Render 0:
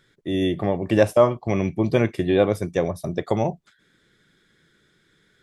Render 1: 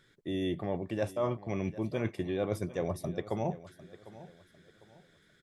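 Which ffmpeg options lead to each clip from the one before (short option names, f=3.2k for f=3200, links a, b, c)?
-af "areverse,acompressor=threshold=-26dB:ratio=5,areverse,aecho=1:1:751|1502|2253:0.141|0.0466|0.0154,volume=-3.5dB"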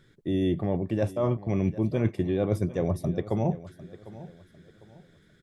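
-af "lowshelf=f=430:g=10.5"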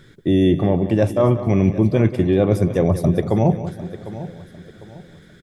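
-filter_complex "[0:a]asplit=2[a][b];[b]alimiter=limit=-21dB:level=0:latency=1:release=313,volume=1dB[c];[a][c]amix=inputs=2:normalize=0,aecho=1:1:185|370|555:0.224|0.0784|0.0274,volume=5.5dB"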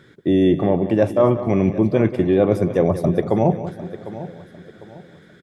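-af "highpass=f=260:p=1,highshelf=f=3.1k:g=-10,volume=3dB"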